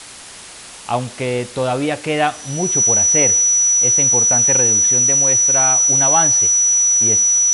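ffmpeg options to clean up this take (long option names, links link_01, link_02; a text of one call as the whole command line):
ffmpeg -i in.wav -af "bandreject=frequency=5900:width=30,afwtdn=0.02" out.wav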